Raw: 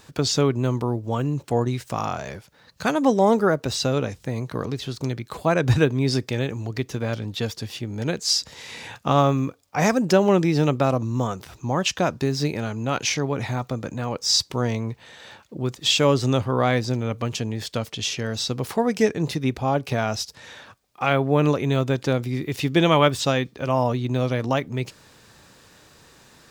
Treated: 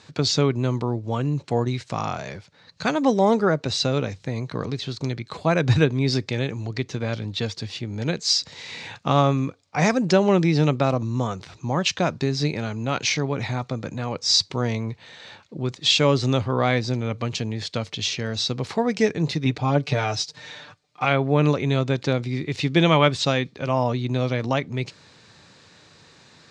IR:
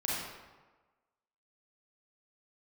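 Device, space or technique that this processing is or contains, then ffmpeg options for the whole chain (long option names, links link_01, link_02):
car door speaker: -filter_complex "[0:a]highpass=87,equalizer=frequency=96:width_type=q:width=4:gain=5,equalizer=frequency=160:width_type=q:width=4:gain=4,equalizer=frequency=2200:width_type=q:width=4:gain=4,equalizer=frequency=4100:width_type=q:width=4:gain=6,lowpass=frequency=7300:width=0.5412,lowpass=frequency=7300:width=1.3066,asettb=1/sr,asplit=3[link_01][link_02][link_03];[link_01]atrim=end=19.454[link_04];[link_02]atrim=start=19.45:end=21.05,asetpts=PTS-STARTPTS,afade=type=in:duration=0.004:curve=qsin,afade=type=out:start_time=1.596:duration=0.004:curve=qsin,aecho=1:1:6.7:0.68,atrim=end_sample=70560[link_05];[link_03]atrim=start=21.046[link_06];[link_04][link_05]acrossfade=duration=0.004:curve1=hsin:curve2=qsin[link_07];[link_07][link_06]acrossfade=duration=0.004:curve1=qsin:curve2=hsin,volume=-1dB"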